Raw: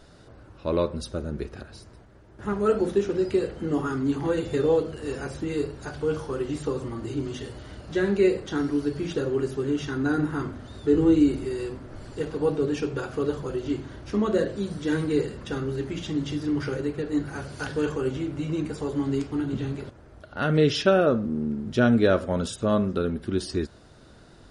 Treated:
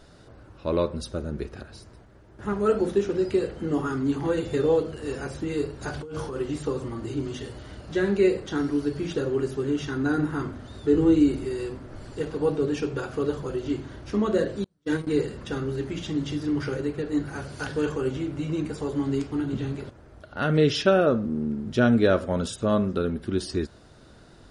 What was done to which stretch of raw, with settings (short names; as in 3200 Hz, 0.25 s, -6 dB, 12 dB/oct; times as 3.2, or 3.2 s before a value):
5.81–6.36 negative-ratio compressor -33 dBFS
14.64–15.07 gate -26 dBFS, range -38 dB